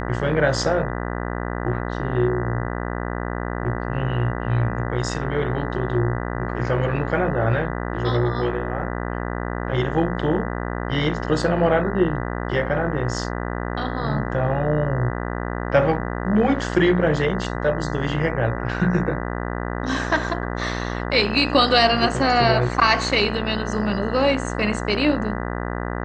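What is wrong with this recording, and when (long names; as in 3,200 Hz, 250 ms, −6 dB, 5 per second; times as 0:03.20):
mains buzz 60 Hz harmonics 33 −27 dBFS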